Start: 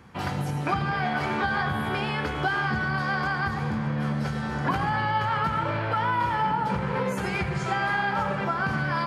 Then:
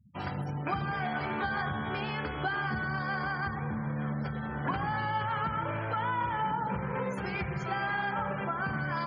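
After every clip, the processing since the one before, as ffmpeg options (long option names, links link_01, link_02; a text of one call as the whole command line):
ffmpeg -i in.wav -af "afftfilt=real='re*gte(hypot(re,im),0.0141)':imag='im*gte(hypot(re,im),0.0141)':win_size=1024:overlap=0.75,volume=-6dB" out.wav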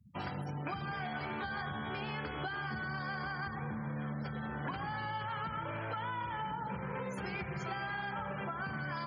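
ffmpeg -i in.wav -filter_complex "[0:a]acrossover=split=130|2800[link_01][link_02][link_03];[link_01]acompressor=threshold=-50dB:ratio=4[link_04];[link_02]acompressor=threshold=-38dB:ratio=4[link_05];[link_03]acompressor=threshold=-50dB:ratio=4[link_06];[link_04][link_05][link_06]amix=inputs=3:normalize=0" out.wav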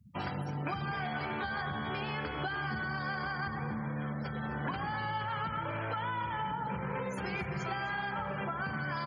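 ffmpeg -i in.wav -af "aecho=1:1:258:0.158,volume=3dB" out.wav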